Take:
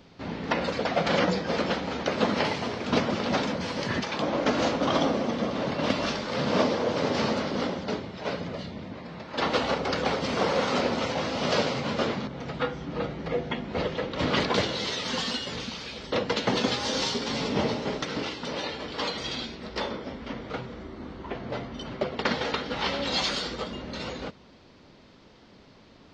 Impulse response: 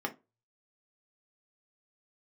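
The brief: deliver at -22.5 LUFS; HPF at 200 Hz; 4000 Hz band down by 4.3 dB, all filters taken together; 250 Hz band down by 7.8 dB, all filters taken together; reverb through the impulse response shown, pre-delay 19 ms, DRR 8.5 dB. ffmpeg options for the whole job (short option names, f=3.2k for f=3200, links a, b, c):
-filter_complex "[0:a]highpass=200,equalizer=f=250:t=o:g=-7.5,equalizer=f=4k:t=o:g=-5.5,asplit=2[a][b];[1:a]atrim=start_sample=2205,adelay=19[c];[b][c]afir=irnorm=-1:irlink=0,volume=-13.5dB[d];[a][d]amix=inputs=2:normalize=0,volume=8dB"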